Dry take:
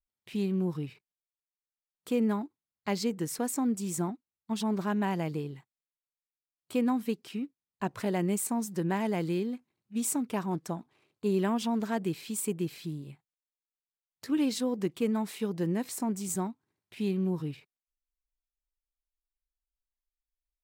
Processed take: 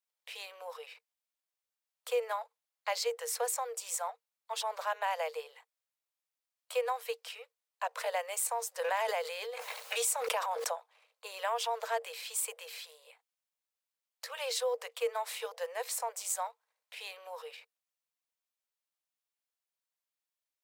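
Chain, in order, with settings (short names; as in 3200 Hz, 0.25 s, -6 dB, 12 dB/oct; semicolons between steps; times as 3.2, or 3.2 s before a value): Chebyshev high-pass 460 Hz, order 10; in parallel at -1.5 dB: limiter -30 dBFS, peak gain reduction 8.5 dB; 8.79–10.78 on the sum: backwards sustainer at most 21 dB/s; gain -1.5 dB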